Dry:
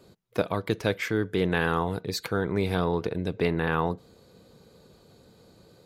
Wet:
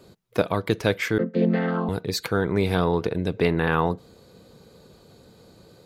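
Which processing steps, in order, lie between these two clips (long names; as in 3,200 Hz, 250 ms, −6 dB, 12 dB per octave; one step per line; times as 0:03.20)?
0:01.18–0:01.89: channel vocoder with a chord as carrier major triad, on F3
level +4 dB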